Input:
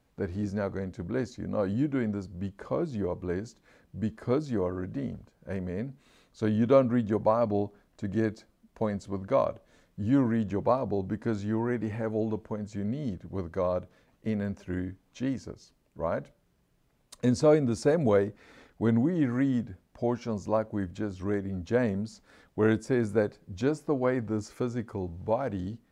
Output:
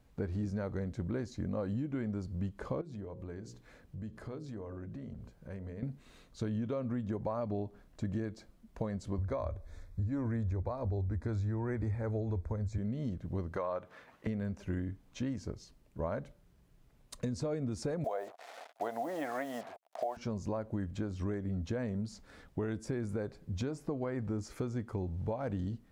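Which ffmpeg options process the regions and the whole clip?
-filter_complex "[0:a]asettb=1/sr,asplit=3[s0][s1][s2];[s0]atrim=end=2.814[s3];[s1]atrim=start=2.81:end=5.83,asetpts=PTS-STARTPTS,afade=t=in:d=0.004:c=qsin,afade=t=out:st=3.016:d=0.004:c=qsin,bandreject=f=60:t=h:w=6,bandreject=f=120:t=h:w=6,bandreject=f=180:t=h:w=6,bandreject=f=240:t=h:w=6,bandreject=f=300:t=h:w=6,bandreject=f=360:t=h:w=6,bandreject=f=420:t=h:w=6,bandreject=f=480:t=h:w=6,bandreject=f=540:t=h:w=6,acompressor=threshold=0.00447:ratio=3:attack=3.2:release=140:knee=1:detection=peak[s4];[s2]atrim=start=5.826[s5];[s3][s4]acrossfade=d=0.004:c1=hsin:c2=qsin[s6];[s6][s5]acrossfade=d=0.004:c1=qsin:c2=hsin,asettb=1/sr,asplit=3[s7][s8][s9];[s7]atrim=end=9.184[s10];[s8]atrim=start=9.18:end=12.78,asetpts=PTS-STARTPTS,afade=t=in:d=0.004:c=qsin,afade=t=out:st=3.596:d=0.004:c=qsin,asuperstop=centerf=2900:order=4:qfactor=3.3,lowshelf=f=110:t=q:w=3:g=10[s11];[s9]atrim=start=12.776[s12];[s10][s11]acrossfade=d=0.004:c1=hsin:c2=qsin[s13];[s13][s12]acrossfade=d=0.004:c1=qsin:c2=hsin,asettb=1/sr,asplit=3[s14][s15][s16];[s14]atrim=end=13.564[s17];[s15]atrim=start=13.56:end=14.27,asetpts=PTS-STARTPTS,afade=t=in:d=0.004:c=qsin,afade=t=out:st=0.706:d=0.004:c=qsin,highpass=f=250:p=1,equalizer=f=1300:t=o:w=2.6:g=12.5[s18];[s16]atrim=start=14.266[s19];[s17][s18]acrossfade=d=0.004:c1=hsin:c2=qsin[s20];[s20][s19]acrossfade=d=0.004:c1=qsin:c2=hsin,asettb=1/sr,asplit=3[s21][s22][s23];[s21]atrim=end=18.044[s24];[s22]atrim=start=18.04:end=20.17,asetpts=PTS-STARTPTS,afade=t=in:d=0.004:c=qsin,afade=t=out:st=2.126:d=0.004:c=qsin,acompressor=mode=upward:threshold=0.00447:ratio=2.5:attack=3.2:release=140:knee=2.83:detection=peak,acrusher=bits=7:mix=0:aa=0.5,highpass=f=690:t=q:w=6.8[s25];[s23]atrim=start=20.166[s26];[s24][s25]acrossfade=d=0.004:c1=hsin:c2=qsin[s27];[s27][s26]acrossfade=d=0.004:c1=qsin:c2=hsin,lowshelf=f=110:g=10,alimiter=limit=0.106:level=0:latency=1:release=189,acompressor=threshold=0.0224:ratio=4"

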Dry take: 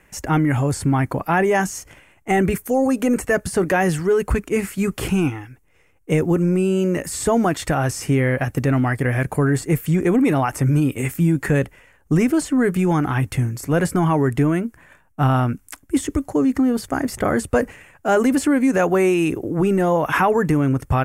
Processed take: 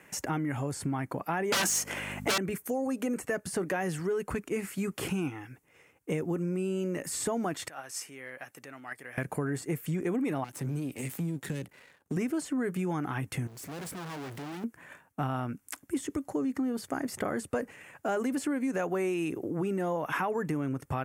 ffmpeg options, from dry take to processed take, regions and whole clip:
-filter_complex "[0:a]asettb=1/sr,asplit=3[s0][s1][s2];[s0]atrim=end=1.524[s3];[s1]atrim=start=1.52:end=2.38,asetpts=PTS-STARTPTS,afade=t=in:d=0.004:c=qsin,afade=t=out:st=0.856:d=0.004:c=qsin,highpass=f=290:w=0.5412,highpass=f=290:w=1.3066,aeval=exprs='0.422*sin(PI/2*7.08*val(0)/0.422)':c=same,aeval=exprs='val(0)+0.0398*(sin(2*PI*50*n/s)+sin(2*PI*2*50*n/s)/2+sin(2*PI*3*50*n/s)/3+sin(2*PI*4*50*n/s)/4+sin(2*PI*5*50*n/s)/5)':c=same[s4];[s2]atrim=start=2.376[s5];[s3][s4]acrossfade=d=0.004:c1=hsin:c2=qsin[s6];[s6][s5]acrossfade=d=0.004:c1=qsin:c2=hsin,asettb=1/sr,asplit=3[s7][s8][s9];[s7]atrim=end=7.684[s10];[s8]atrim=start=7.68:end=9.18,asetpts=PTS-STARTPTS,afade=t=in:d=0.004:c=qsin,afade=t=out:st=1.496:d=0.004:c=qsin,acompressor=threshold=0.0562:ratio=2:attack=3.2:release=140:knee=1:detection=peak,highpass=f=1200:p=1,agate=range=0.282:threshold=0.0282:ratio=16:release=100:detection=peak[s11];[s9]atrim=start=9.176[s12];[s10][s11]acrossfade=d=0.004:c1=hsin:c2=qsin[s13];[s13][s12]acrossfade=d=0.004:c1=qsin:c2=hsin,asettb=1/sr,asplit=3[s14][s15][s16];[s14]atrim=end=10.444[s17];[s15]atrim=start=10.44:end=12.17,asetpts=PTS-STARTPTS,afade=t=in:d=0.004:c=qsin,afade=t=out:st=1.726:d=0.004:c=qsin,aeval=exprs='if(lt(val(0),0),0.251*val(0),val(0))':c=same,highpass=45,acrossover=split=320|3000[s18][s19][s20];[s19]acompressor=threshold=0.0112:ratio=4:attack=3.2:release=140:knee=2.83:detection=peak[s21];[s18][s21][s20]amix=inputs=3:normalize=0[s22];[s16]atrim=start=12.166[s23];[s17][s22]acrossfade=d=0.004:c1=hsin:c2=qsin[s24];[s24][s23]acrossfade=d=0.004:c1=qsin:c2=hsin,asettb=1/sr,asplit=3[s25][s26][s27];[s25]atrim=end=13.474[s28];[s26]atrim=start=13.47:end=14.64,asetpts=PTS-STARTPTS,afade=t=in:d=0.004:c=qsin,afade=t=out:st=1.166:d=0.004:c=qsin,aeval=exprs='(tanh(79.4*val(0)+0.15)-tanh(0.15))/79.4':c=same,acrusher=bits=3:mode=log:mix=0:aa=0.000001[s29];[s27]atrim=start=14.636[s30];[s28][s29]acrossfade=d=0.004:c1=hsin:c2=qsin[s31];[s31][s30]acrossfade=d=0.004:c1=qsin:c2=hsin,highpass=140,acompressor=threshold=0.0178:ratio=2.5"

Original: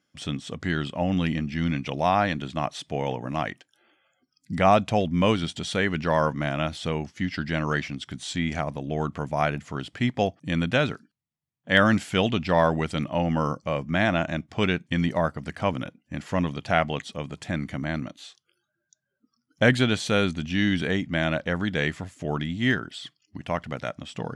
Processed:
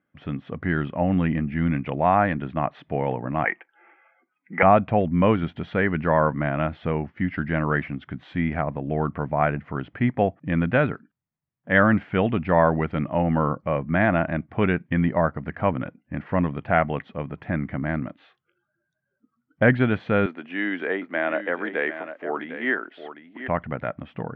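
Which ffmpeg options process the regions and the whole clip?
-filter_complex "[0:a]asettb=1/sr,asplit=3[s0][s1][s2];[s0]atrim=end=3.444[s3];[s1]atrim=start=3.44:end=4.63,asetpts=PTS-STARTPTS,afade=t=in:d=0.004:c=qsin,afade=t=out:st=1.186:d=0.004:c=qsin,highpass=f=290:w=0.5412,highpass=f=290:w=1.3066,equalizer=f=290:t=q:w=4:g=-10,equalizer=f=590:t=q:w=4:g=-7,equalizer=f=850:t=q:w=4:g=6,equalizer=f=2200:t=q:w=4:g=8,lowpass=f=2700:w=0.5412,lowpass=f=2700:w=1.3066,aecho=1:1:6:0.33,atrim=end_sample=52479,acontrast=42[s4];[s2]atrim=start=4.626[s5];[s3][s4]acrossfade=d=0.004:c1=hsin:c2=qsin[s6];[s6][s5]acrossfade=d=0.004:c1=qsin:c2=hsin,asettb=1/sr,asplit=3[s7][s8][s9];[s7]atrim=end=20.264[s10];[s8]atrim=start=20.26:end=23.48,asetpts=PTS-STARTPTS,afade=t=in:d=0.004:c=qsin,afade=t=out:st=3.216:d=0.004:c=qsin,highpass=f=320:w=0.5412,highpass=f=320:w=1.3066,aecho=1:1:753:0.282,atrim=end_sample=142002[s11];[s9]atrim=start=23.476[s12];[s10][s11]acrossfade=d=0.004:c1=hsin:c2=qsin[s13];[s13][s12]acrossfade=d=0.004:c1=qsin:c2=hsin,lowpass=f=2100:w=0.5412,lowpass=f=2100:w=1.3066,dynaudnorm=f=280:g=3:m=1.41"

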